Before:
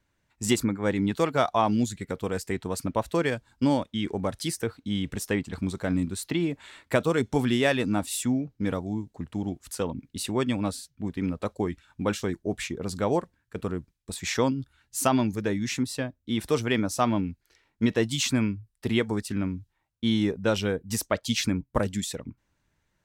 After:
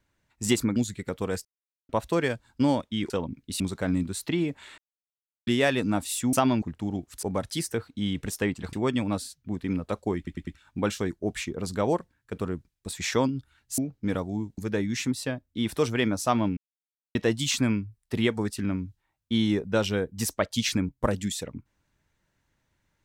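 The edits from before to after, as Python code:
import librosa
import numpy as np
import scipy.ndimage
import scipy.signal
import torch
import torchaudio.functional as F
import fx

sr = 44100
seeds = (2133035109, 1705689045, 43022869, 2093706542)

y = fx.edit(x, sr, fx.cut(start_s=0.76, length_s=1.02),
    fx.silence(start_s=2.47, length_s=0.44),
    fx.swap(start_s=4.12, length_s=1.5, other_s=9.76, other_length_s=0.5),
    fx.silence(start_s=6.8, length_s=0.69),
    fx.swap(start_s=8.35, length_s=0.8, other_s=15.01, other_length_s=0.29),
    fx.stutter(start_s=11.7, slice_s=0.1, count=4),
    fx.silence(start_s=17.29, length_s=0.58), tone=tone)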